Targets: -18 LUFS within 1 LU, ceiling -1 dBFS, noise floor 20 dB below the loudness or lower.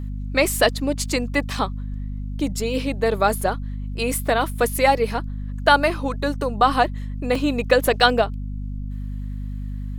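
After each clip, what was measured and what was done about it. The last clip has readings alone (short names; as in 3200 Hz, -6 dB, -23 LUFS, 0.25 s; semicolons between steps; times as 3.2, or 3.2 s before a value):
dropouts 2; longest dropout 3.3 ms; hum 50 Hz; harmonics up to 250 Hz; hum level -26 dBFS; loudness -21.5 LUFS; peak -1.5 dBFS; loudness target -18.0 LUFS
-> interpolate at 3.41/7.35, 3.3 ms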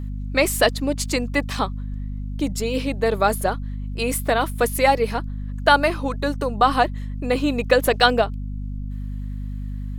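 dropouts 0; hum 50 Hz; harmonics up to 250 Hz; hum level -26 dBFS
-> de-hum 50 Hz, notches 5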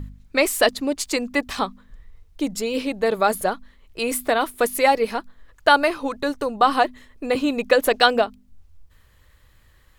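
hum none; loudness -21.5 LUFS; peak -1.5 dBFS; loudness target -18.0 LUFS
-> gain +3.5 dB; limiter -1 dBFS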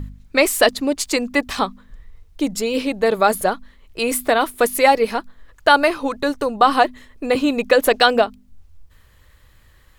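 loudness -18.5 LUFS; peak -1.0 dBFS; noise floor -52 dBFS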